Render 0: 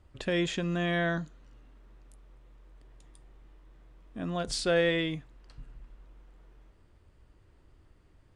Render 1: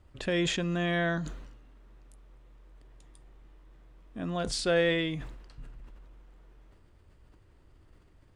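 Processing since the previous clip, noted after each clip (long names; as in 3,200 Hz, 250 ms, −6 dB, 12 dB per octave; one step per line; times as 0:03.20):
level that may fall only so fast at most 52 dB per second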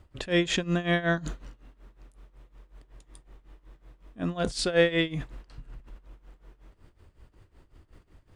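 amplitude tremolo 5.4 Hz, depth 86%
level +6.5 dB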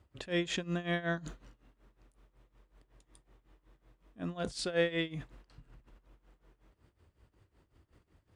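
high-pass filter 55 Hz
level −8 dB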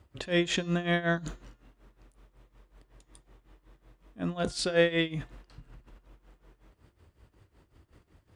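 hum removal 353.8 Hz, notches 20
level +6 dB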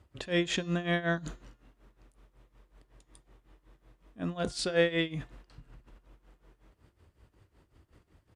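downsampling to 32,000 Hz
level −2 dB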